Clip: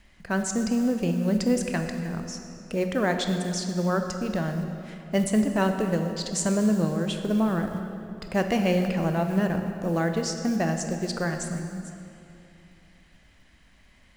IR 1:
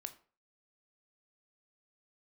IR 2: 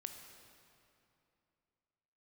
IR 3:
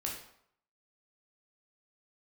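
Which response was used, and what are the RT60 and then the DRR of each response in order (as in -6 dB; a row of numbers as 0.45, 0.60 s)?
2; 0.40, 2.8, 0.70 s; 8.5, 5.0, -2.0 dB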